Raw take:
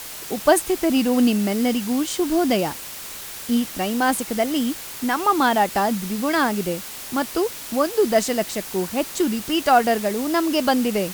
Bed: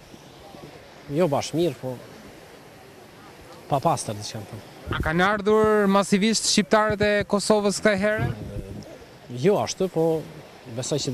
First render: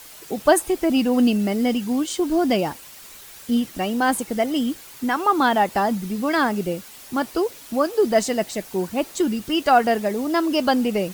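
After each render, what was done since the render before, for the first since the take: denoiser 9 dB, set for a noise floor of -35 dBFS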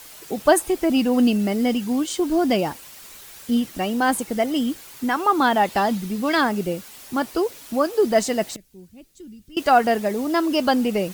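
5.63–6.41 dynamic EQ 3500 Hz, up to +6 dB, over -43 dBFS, Q 1.2; 8.56–9.57 passive tone stack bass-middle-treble 10-0-1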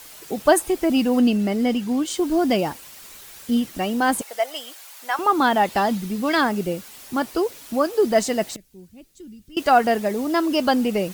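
1.19–2.06 high shelf 7200 Hz -6.5 dB; 4.21–5.19 Chebyshev high-pass 620 Hz, order 3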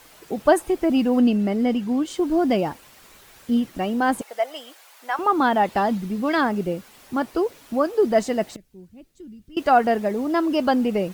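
high shelf 3100 Hz -10.5 dB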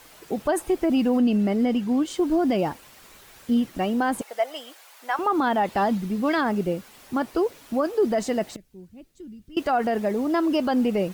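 limiter -14 dBFS, peak gain reduction 10 dB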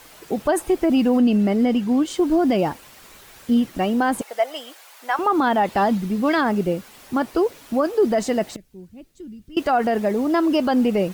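gain +3.5 dB

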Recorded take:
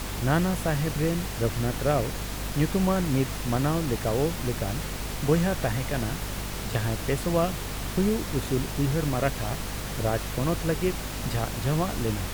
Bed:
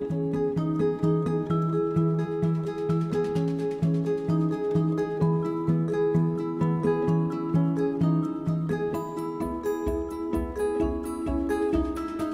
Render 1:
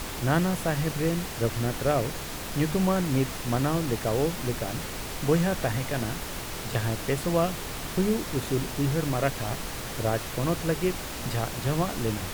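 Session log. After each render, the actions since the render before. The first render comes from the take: notches 50/100/150/200/250 Hz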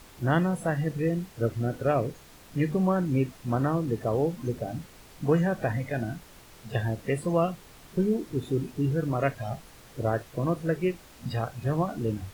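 noise print and reduce 16 dB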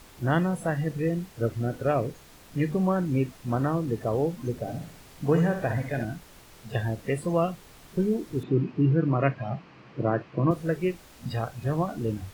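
4.58–6.05 flutter echo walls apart 11.1 m, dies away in 0.5 s; 8.43–10.51 speaker cabinet 120–4100 Hz, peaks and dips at 130 Hz +7 dB, 190 Hz +8 dB, 320 Hz +7 dB, 1100 Hz +5 dB, 2500 Hz +4 dB, 3600 Hz -8 dB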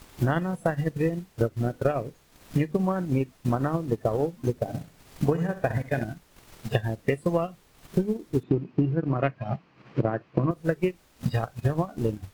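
transient shaper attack +11 dB, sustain -9 dB; compressor 5:1, threshold -20 dBFS, peak gain reduction 10 dB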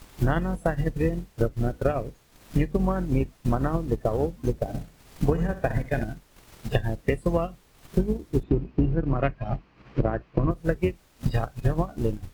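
octaver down 2 oct, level -2 dB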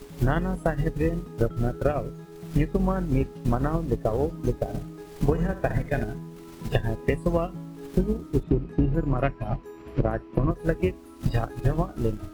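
add bed -15 dB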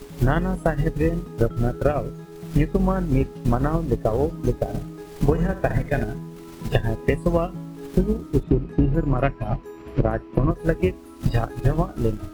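gain +3.5 dB

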